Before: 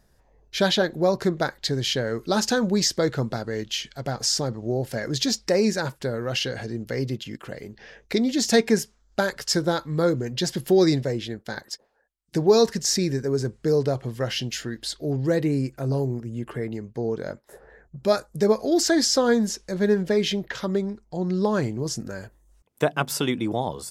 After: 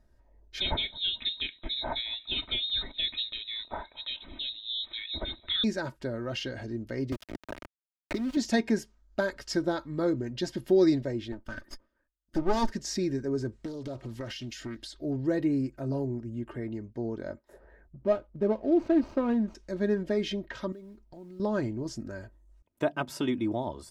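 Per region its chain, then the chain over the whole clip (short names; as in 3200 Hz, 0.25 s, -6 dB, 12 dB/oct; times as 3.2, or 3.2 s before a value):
0.6–5.64 frequency-shifting echo 0.218 s, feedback 38%, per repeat -31 Hz, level -23 dB + inverted band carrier 3900 Hz
7.12–8.37 sample gate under -28 dBFS + three-band squash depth 100%
11.32–12.71 minimum comb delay 0.62 ms + comb 3.4 ms, depth 31%
13.52–14.94 high shelf 2800 Hz +9 dB + compressor 16:1, threshold -26 dBFS + Doppler distortion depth 0.38 ms
17.99–19.55 median filter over 25 samples + LPF 2200 Hz 6 dB/oct
20.72–21.4 compressor 4:1, threshold -40 dBFS + modulation noise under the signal 24 dB
whole clip: LPF 3100 Hz 6 dB/oct; low shelf 280 Hz +5.5 dB; comb 3.2 ms, depth 57%; gain -8 dB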